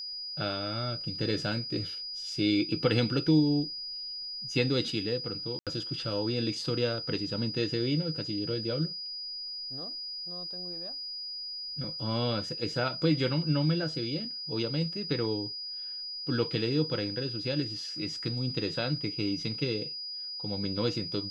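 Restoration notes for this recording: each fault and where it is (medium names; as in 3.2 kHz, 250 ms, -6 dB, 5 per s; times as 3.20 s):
whine 4.9 kHz -36 dBFS
5.59–5.67 s: dropout 77 ms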